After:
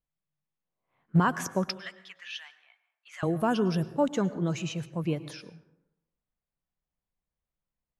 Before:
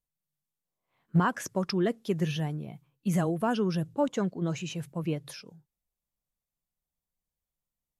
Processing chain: 1.7–3.23 HPF 1400 Hz 24 dB/oct; low-pass opened by the level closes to 2400 Hz, open at -27.5 dBFS; plate-style reverb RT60 0.92 s, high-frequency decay 0.45×, pre-delay 90 ms, DRR 15 dB; gain +1.5 dB

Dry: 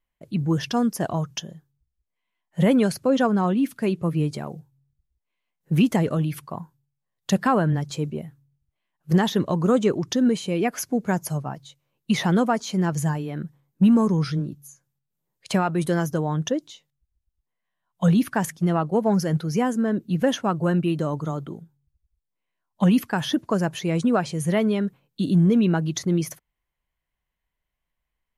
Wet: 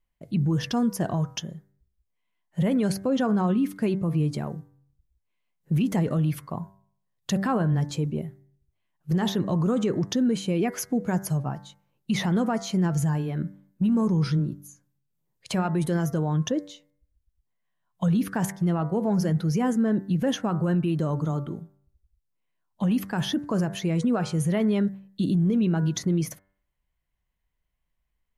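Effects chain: low shelf 260 Hz +7 dB; de-hum 97.16 Hz, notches 22; limiter -15 dBFS, peak gain reduction 10.5 dB; gain -2 dB

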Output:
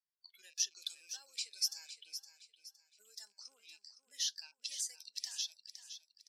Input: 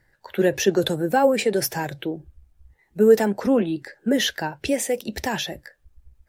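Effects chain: rattling part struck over -35 dBFS, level -26 dBFS; spectral noise reduction 19 dB; compressor, threshold -19 dBFS, peak gain reduction 9.5 dB; ladder band-pass 5600 Hz, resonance 55%; on a send: feedback echo 0.514 s, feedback 34%, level -11 dB; on the sum: gain +2 dB

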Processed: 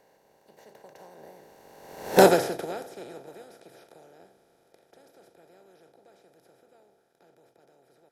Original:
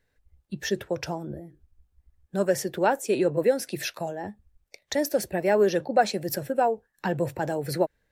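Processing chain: per-bin compression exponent 0.2; Doppler pass-by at 2.2, 25 m/s, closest 2.1 m; upward expander 1.5:1, over -40 dBFS; gain +2.5 dB

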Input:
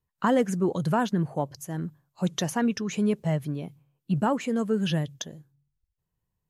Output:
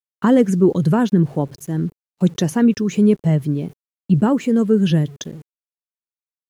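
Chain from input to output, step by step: sample gate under -48.5 dBFS; resonant low shelf 510 Hz +6.5 dB, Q 1.5; gate with hold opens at -38 dBFS; gain +3.5 dB

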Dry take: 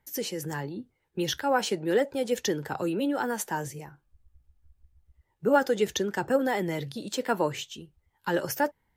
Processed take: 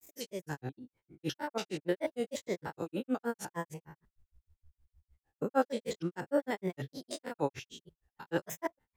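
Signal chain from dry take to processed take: stepped spectrum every 0.1 s; grains 0.114 s, grains 6.5/s, spray 13 ms, pitch spread up and down by 3 st

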